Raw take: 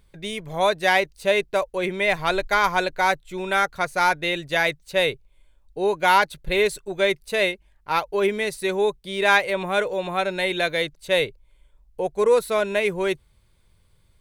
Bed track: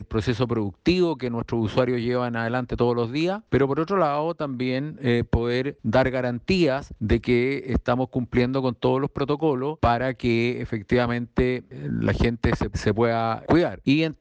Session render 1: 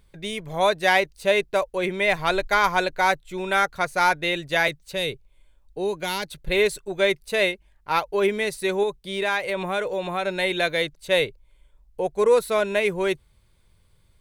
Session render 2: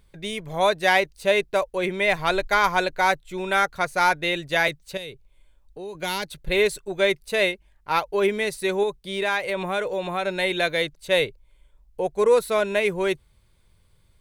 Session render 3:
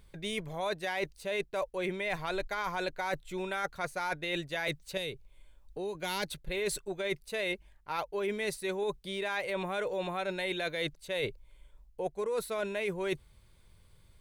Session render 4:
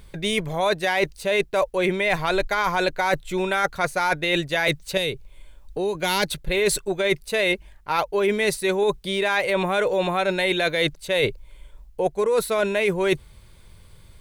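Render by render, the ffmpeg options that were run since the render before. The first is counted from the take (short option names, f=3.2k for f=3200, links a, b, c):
-filter_complex "[0:a]asettb=1/sr,asplit=3[a][b][c];[a]atrim=end=4.684[d];[b]atrim=start=4.68:end=6.42,asetpts=PTS-STARTPTS,afade=t=in:d=0.004:c=qsin,afade=t=out:st=1.736:d=0.004:c=qsin,acrossover=split=380|3000[e][f][g];[f]acompressor=threshold=-30dB:ratio=6:attack=3.2:release=140:knee=2.83:detection=peak[h];[e][h][g]amix=inputs=3:normalize=0[i];[c]atrim=start=6.416[j];[d][i]acrossfade=d=0.004:c1=hsin:c2=qsin[k];[k][j]acrossfade=d=0.004:c1=qsin:c2=hsin,asettb=1/sr,asplit=3[l][m][n];[l]atrim=end=8.834[o];[m]atrim=start=8.83:end=10.27,asetpts=PTS-STARTPTS,afade=t=in:d=0.004:c=qsin,afade=t=out:st=1.436:d=0.004:c=qsin,acompressor=threshold=-22dB:ratio=2.5:attack=3.2:release=140:knee=1:detection=peak[p];[n]atrim=start=10.266[q];[o][p]acrossfade=d=0.004:c1=hsin:c2=qsin[r];[r][q]acrossfade=d=0.004:c1=qsin:c2=hsin"
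-filter_complex "[0:a]asettb=1/sr,asplit=3[a][b][c];[a]atrim=end=4.974[d];[b]atrim=start=4.97:end=5.95,asetpts=PTS-STARTPTS,afade=t=in:d=0.004:c=qsin,afade=t=out:st=0.976:d=0.004:c=qsin,acompressor=threshold=-40dB:ratio=2:attack=3.2:release=140:knee=1:detection=peak[e];[c]atrim=start=5.946[f];[d][e]acrossfade=d=0.004:c1=hsin:c2=qsin[g];[g][f]acrossfade=d=0.004:c1=qsin:c2=hsin"
-af "alimiter=limit=-15dB:level=0:latency=1:release=29,areverse,acompressor=threshold=-31dB:ratio=6,areverse"
-af "volume=12dB"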